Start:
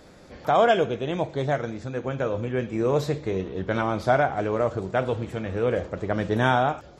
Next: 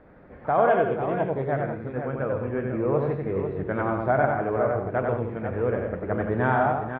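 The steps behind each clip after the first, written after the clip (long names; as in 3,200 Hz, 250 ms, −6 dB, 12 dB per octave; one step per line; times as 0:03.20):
low-pass filter 2,000 Hz 24 dB per octave
multi-tap delay 92/163/196/468/495 ms −4/−11/−16.5/−19.5/−8.5 dB
level −2.5 dB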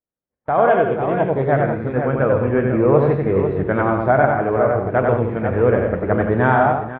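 noise gate −38 dBFS, range −44 dB
automatic gain control gain up to 11.5 dB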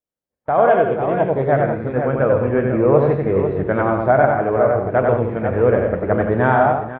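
parametric band 590 Hz +3 dB 0.73 octaves
level −1 dB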